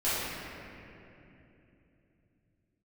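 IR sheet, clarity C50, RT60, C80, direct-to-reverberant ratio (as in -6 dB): -4.5 dB, 3.0 s, -2.0 dB, -14.5 dB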